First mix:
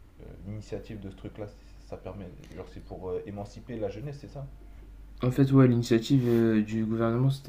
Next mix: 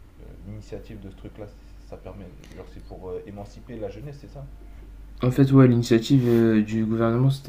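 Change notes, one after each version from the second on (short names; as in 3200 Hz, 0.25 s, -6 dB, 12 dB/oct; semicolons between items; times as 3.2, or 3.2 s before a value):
second voice +5.0 dB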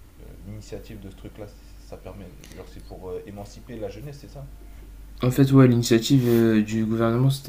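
master: add high shelf 4500 Hz +10.5 dB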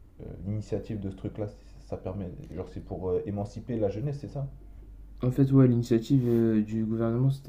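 second voice -11.5 dB; master: add tilt shelf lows +7 dB, about 1100 Hz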